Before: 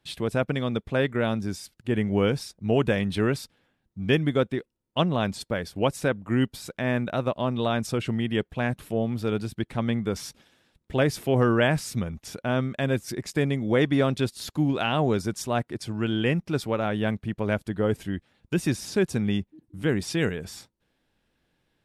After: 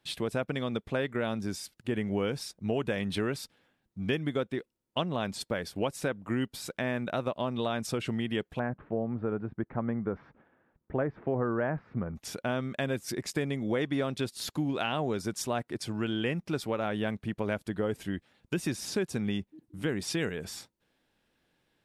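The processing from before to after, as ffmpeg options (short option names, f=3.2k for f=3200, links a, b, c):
-filter_complex "[0:a]asettb=1/sr,asplit=3[a][b][c];[a]atrim=end=8.594[d];[b]atrim=start=8.59:end=12.16,asetpts=PTS-STARTPTS,afade=t=in:d=0.004:c=qsin,afade=t=out:st=3.566:d=0.004:c=qsin,lowpass=f=1.6k:w=0.5412,lowpass=f=1.6k:w=1.3066[e];[c]atrim=start=12.156[f];[d][e]acrossfade=d=0.004:c1=hsin:c2=qsin[g];[g][f]acrossfade=d=0.004:c1=qsin:c2=hsin,lowshelf=f=130:g=-8,acompressor=threshold=-28dB:ratio=3"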